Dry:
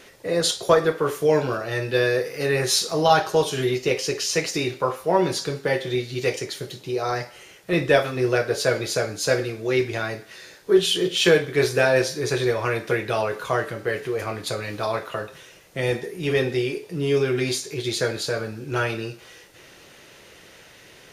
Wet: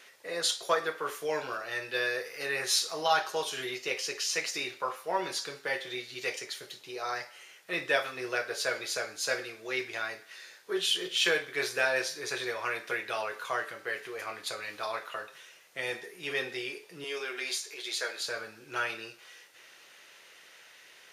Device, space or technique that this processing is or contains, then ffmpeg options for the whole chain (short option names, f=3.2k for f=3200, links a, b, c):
filter by subtraction: -filter_complex "[0:a]asettb=1/sr,asplit=3[a][b][c];[a]atrim=end=17.044[d];[b]atrim=start=17.04:end=18.2,asetpts=PTS-STARTPTS,afade=t=in:d=0.004:c=qsin,afade=t=out:st=1.156:d=0.004:c=qsin,highpass=410[e];[c]atrim=start=18.196[f];[d][e]acrossfade=d=0.004:c1=hsin:c2=qsin[g];[g][f]acrossfade=d=0.004:c1=qsin:c2=hsin,asplit=2[h][i];[i]lowpass=1.6k,volume=-1[j];[h][j]amix=inputs=2:normalize=0,volume=-6.5dB"